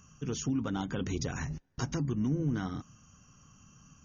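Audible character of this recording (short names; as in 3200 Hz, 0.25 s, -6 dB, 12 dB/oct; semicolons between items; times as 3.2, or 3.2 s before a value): noise floor -62 dBFS; spectral tilt -6.0 dB/oct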